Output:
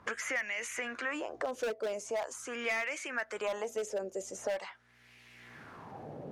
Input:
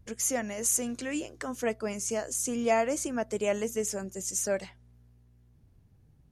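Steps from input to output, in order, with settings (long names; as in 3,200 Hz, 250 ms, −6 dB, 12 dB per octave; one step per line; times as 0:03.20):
dynamic equaliser 140 Hz, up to −8 dB, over −48 dBFS, Q 0.71
LFO wah 0.43 Hz 510–2,300 Hz, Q 3.2
transient designer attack −2 dB, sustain +3 dB
hard clipping −36.5 dBFS, distortion −11 dB
multiband upward and downward compressor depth 100%
level +9 dB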